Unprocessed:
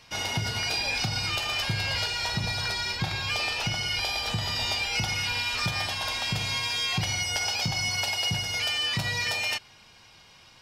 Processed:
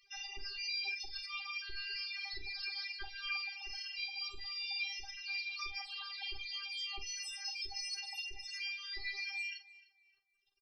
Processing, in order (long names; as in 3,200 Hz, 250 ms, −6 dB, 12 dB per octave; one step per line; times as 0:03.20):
first-order pre-emphasis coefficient 0.8
notch filter 7,000 Hz, Q 5.7
hum removal 211.7 Hz, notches 22
reverb reduction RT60 1.7 s
high-shelf EQ 4,700 Hz −8.5 dB
downward compressor 6 to 1, threshold −41 dBFS, peak gain reduction 6.5 dB
bit-depth reduction 10 bits, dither none
spectral peaks only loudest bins 16
phases set to zero 399 Hz
double-tracking delay 47 ms −11.5 dB
tape delay 305 ms, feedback 30%, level −18.5 dB, low-pass 5,200 Hz
amplitude modulation by smooth noise, depth 60%
level +9.5 dB